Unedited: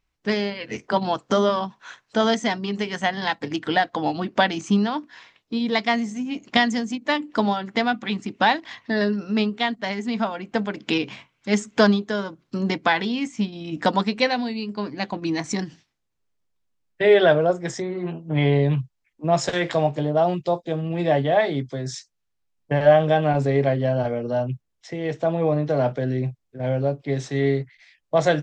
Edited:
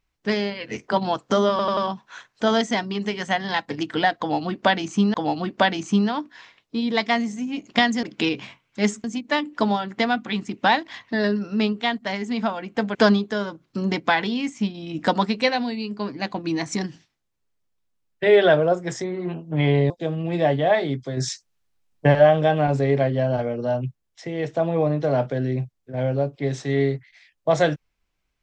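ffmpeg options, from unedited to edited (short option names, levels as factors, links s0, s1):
-filter_complex "[0:a]asplit=11[s0][s1][s2][s3][s4][s5][s6][s7][s8][s9][s10];[s0]atrim=end=1.592[s11];[s1]atrim=start=1.498:end=1.592[s12];[s2]atrim=start=1.498:end=1.592[s13];[s3]atrim=start=1.498:end=4.872[s14];[s4]atrim=start=3.918:end=6.812[s15];[s5]atrim=start=10.718:end=11.732[s16];[s6]atrim=start=6.808:end=10.722[s17];[s7]atrim=start=11.728:end=18.682[s18];[s8]atrim=start=20.558:end=21.832[s19];[s9]atrim=start=21.828:end=22.812,asetpts=PTS-STARTPTS,volume=1.88[s20];[s10]atrim=start=22.808[s21];[s11][s12]acrossfade=d=0.004:c1=hsin:c2=hsin[s22];[s22][s13]acrossfade=d=0.004:c1=hsin:c2=hsin[s23];[s23][s14]acrossfade=d=0.004:c1=hsin:c2=hsin[s24];[s24][s15]acrossfade=d=0.004:c1=hsin:c2=hsin[s25];[s25][s16]acrossfade=d=0.004:c1=hsin:c2=hsin[s26];[s26][s17]acrossfade=d=0.004:c1=hsin:c2=hsin[s27];[s27][s18]acrossfade=d=0.004:c1=hsin:c2=hsin[s28];[s28][s19]acrossfade=d=0.004:c1=hsin:c2=hsin[s29];[s29][s20]acrossfade=d=0.004:c1=hsin:c2=hsin[s30];[s30][s21]acrossfade=d=0.004:c1=hsin:c2=hsin"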